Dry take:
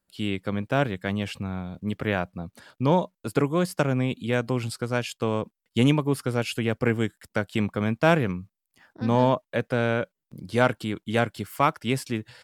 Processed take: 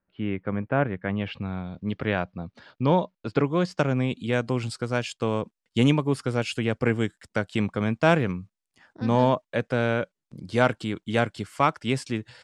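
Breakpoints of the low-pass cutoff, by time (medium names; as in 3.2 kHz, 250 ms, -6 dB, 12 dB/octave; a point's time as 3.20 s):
low-pass 24 dB/octave
1.05 s 2.2 kHz
1.48 s 5 kHz
3.35 s 5 kHz
4.20 s 8.8 kHz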